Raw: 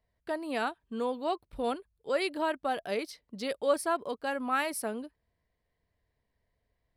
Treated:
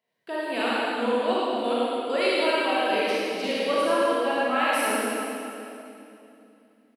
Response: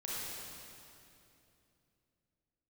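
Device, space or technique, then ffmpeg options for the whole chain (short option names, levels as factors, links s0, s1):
PA in a hall: -filter_complex "[0:a]asettb=1/sr,asplit=3[s0][s1][s2];[s0]atrim=end=3.534[s3];[s1]atrim=start=3.53:end=4.73,asetpts=PTS-STARTPTS,afade=t=in:d=0.004:c=qsin,afade=t=out:st=1.196:d=0.004:c=qsin,highshelf=f=5800:g=-11[s4];[s2]atrim=start=4.726[s5];[s3][s4]acrossfade=d=0.004:c1=hsin:c2=qsin[s6];[s6][s5]acrossfade=d=0.004:c1=qsin:c2=hsin,highpass=f=180:w=0.5412,highpass=f=180:w=1.3066,equalizer=f=2800:t=o:w=0.63:g=7.5,aecho=1:1:113:0.473[s7];[1:a]atrim=start_sample=2205[s8];[s7][s8]afir=irnorm=-1:irlink=0,volume=1.68"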